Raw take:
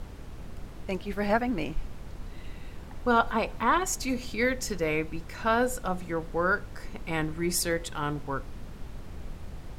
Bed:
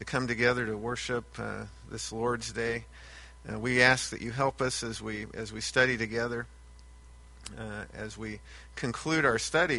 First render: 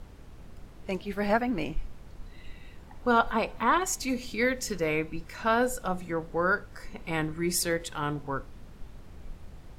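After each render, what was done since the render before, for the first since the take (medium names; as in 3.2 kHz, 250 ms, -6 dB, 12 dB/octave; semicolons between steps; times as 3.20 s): noise print and reduce 6 dB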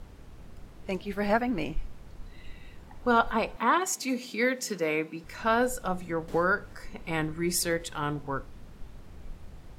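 3.56–5.24 s: steep high-pass 170 Hz; 6.28–6.73 s: three bands compressed up and down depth 70%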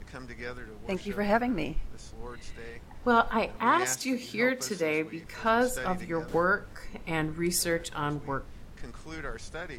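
add bed -13.5 dB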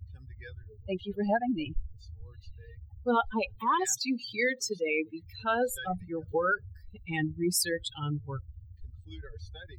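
expander on every frequency bin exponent 3; level flattener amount 50%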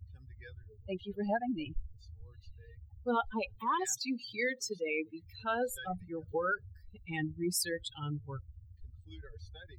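trim -5 dB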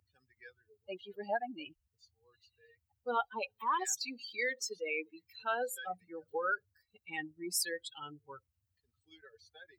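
high-pass 490 Hz 12 dB/octave; band-stop 3.5 kHz, Q 13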